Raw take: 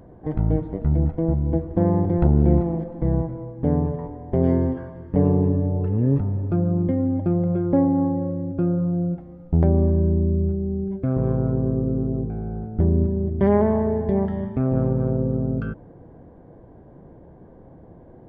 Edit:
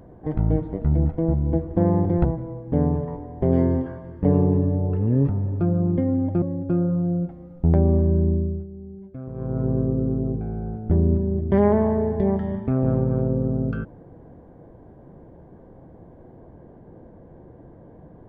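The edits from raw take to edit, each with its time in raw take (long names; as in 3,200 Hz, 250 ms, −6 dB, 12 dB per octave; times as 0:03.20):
0:02.25–0:03.16: remove
0:07.33–0:08.31: remove
0:10.19–0:11.59: duck −13 dB, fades 0.36 s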